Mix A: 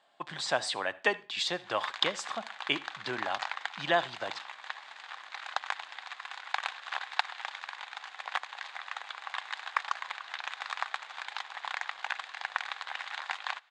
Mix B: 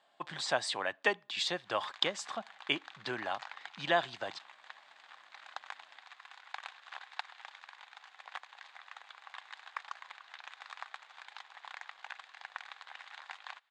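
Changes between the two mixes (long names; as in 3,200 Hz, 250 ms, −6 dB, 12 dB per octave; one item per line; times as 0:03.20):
background −10.5 dB
reverb: off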